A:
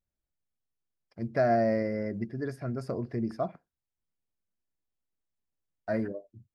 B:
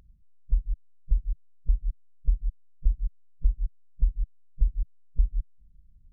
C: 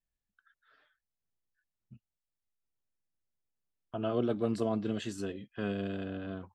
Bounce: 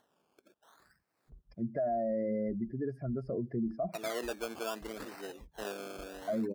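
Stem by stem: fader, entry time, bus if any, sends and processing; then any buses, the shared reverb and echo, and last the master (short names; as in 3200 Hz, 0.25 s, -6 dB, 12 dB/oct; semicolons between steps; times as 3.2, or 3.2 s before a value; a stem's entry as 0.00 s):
+0.5 dB, 0.40 s, no send, spectral contrast raised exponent 1.8
-0.5 dB, 0.80 s, no send, resonator 370 Hz, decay 0.19 s, harmonics all, mix 80%
0.0 dB, 0.00 s, no send, HPF 510 Hz 12 dB/oct; decimation with a swept rate 18×, swing 60% 0.72 Hz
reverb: off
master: HPF 140 Hz 12 dB/oct; upward compressor, threshold -57 dBFS; limiter -26 dBFS, peak gain reduction 9 dB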